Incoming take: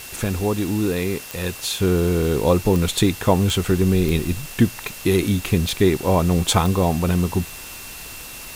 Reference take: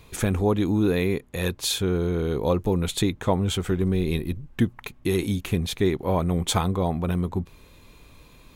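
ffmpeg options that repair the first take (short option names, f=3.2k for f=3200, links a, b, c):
-af "adeclick=t=4,bandreject=f=2.7k:w=30,afwtdn=0.016,asetnsamples=n=441:p=0,asendcmd='1.8 volume volume -5.5dB',volume=0dB"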